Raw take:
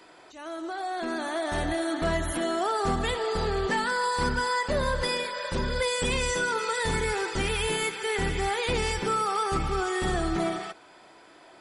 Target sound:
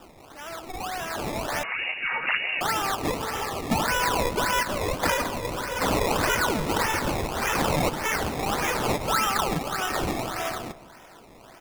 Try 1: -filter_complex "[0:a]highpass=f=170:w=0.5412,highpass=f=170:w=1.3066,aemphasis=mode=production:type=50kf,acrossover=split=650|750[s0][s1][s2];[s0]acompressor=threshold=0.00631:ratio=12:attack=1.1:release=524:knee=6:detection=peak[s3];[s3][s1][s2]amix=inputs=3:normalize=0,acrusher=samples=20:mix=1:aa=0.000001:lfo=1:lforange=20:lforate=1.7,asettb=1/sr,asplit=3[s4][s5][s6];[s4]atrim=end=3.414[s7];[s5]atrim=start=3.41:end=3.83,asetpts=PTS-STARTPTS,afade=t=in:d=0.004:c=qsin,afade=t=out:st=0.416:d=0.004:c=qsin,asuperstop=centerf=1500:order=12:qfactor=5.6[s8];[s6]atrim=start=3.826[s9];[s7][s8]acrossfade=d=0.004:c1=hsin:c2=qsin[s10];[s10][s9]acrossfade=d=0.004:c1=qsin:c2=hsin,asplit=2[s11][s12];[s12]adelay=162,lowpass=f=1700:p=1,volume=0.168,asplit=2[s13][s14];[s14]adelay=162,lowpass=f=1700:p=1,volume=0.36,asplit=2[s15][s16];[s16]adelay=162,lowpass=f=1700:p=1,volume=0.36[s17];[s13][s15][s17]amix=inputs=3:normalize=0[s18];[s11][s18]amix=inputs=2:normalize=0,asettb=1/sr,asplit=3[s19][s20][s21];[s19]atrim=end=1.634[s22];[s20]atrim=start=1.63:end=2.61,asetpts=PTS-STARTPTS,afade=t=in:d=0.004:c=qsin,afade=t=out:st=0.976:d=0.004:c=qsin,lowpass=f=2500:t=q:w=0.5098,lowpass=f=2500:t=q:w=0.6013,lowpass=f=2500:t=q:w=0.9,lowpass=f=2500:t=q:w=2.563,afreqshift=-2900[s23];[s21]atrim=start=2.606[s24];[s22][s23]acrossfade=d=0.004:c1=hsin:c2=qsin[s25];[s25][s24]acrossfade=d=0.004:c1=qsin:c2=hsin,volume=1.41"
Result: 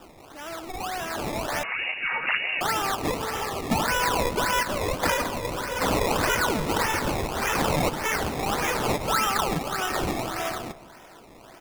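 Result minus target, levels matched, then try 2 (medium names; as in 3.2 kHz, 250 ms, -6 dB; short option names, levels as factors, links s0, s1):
compression: peak gain reduction -8.5 dB
-filter_complex "[0:a]highpass=f=170:w=0.5412,highpass=f=170:w=1.3066,aemphasis=mode=production:type=50kf,acrossover=split=650|750[s0][s1][s2];[s0]acompressor=threshold=0.00211:ratio=12:attack=1.1:release=524:knee=6:detection=peak[s3];[s3][s1][s2]amix=inputs=3:normalize=0,acrusher=samples=20:mix=1:aa=0.000001:lfo=1:lforange=20:lforate=1.7,asettb=1/sr,asplit=3[s4][s5][s6];[s4]atrim=end=3.414[s7];[s5]atrim=start=3.41:end=3.83,asetpts=PTS-STARTPTS,afade=t=in:d=0.004:c=qsin,afade=t=out:st=0.416:d=0.004:c=qsin,asuperstop=centerf=1500:order=12:qfactor=5.6[s8];[s6]atrim=start=3.826[s9];[s7][s8]acrossfade=d=0.004:c1=hsin:c2=qsin[s10];[s10][s9]acrossfade=d=0.004:c1=qsin:c2=hsin,asplit=2[s11][s12];[s12]adelay=162,lowpass=f=1700:p=1,volume=0.168,asplit=2[s13][s14];[s14]adelay=162,lowpass=f=1700:p=1,volume=0.36,asplit=2[s15][s16];[s16]adelay=162,lowpass=f=1700:p=1,volume=0.36[s17];[s13][s15][s17]amix=inputs=3:normalize=0[s18];[s11][s18]amix=inputs=2:normalize=0,asettb=1/sr,asplit=3[s19][s20][s21];[s19]atrim=end=1.634[s22];[s20]atrim=start=1.63:end=2.61,asetpts=PTS-STARTPTS,afade=t=in:d=0.004:c=qsin,afade=t=out:st=0.976:d=0.004:c=qsin,lowpass=f=2500:t=q:w=0.5098,lowpass=f=2500:t=q:w=0.6013,lowpass=f=2500:t=q:w=0.9,lowpass=f=2500:t=q:w=2.563,afreqshift=-2900[s23];[s21]atrim=start=2.606[s24];[s22][s23]acrossfade=d=0.004:c1=hsin:c2=qsin[s25];[s25][s24]acrossfade=d=0.004:c1=qsin:c2=hsin,volume=1.41"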